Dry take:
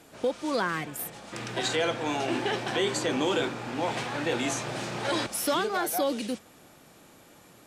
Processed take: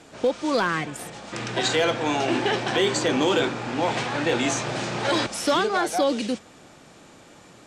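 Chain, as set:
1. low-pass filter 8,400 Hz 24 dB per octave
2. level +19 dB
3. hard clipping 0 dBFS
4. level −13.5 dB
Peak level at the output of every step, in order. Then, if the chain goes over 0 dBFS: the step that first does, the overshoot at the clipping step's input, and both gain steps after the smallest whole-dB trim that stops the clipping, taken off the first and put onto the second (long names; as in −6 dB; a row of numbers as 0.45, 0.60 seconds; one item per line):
−15.0, +4.0, 0.0, −13.5 dBFS
step 2, 4.0 dB
step 2 +15 dB, step 4 −9.5 dB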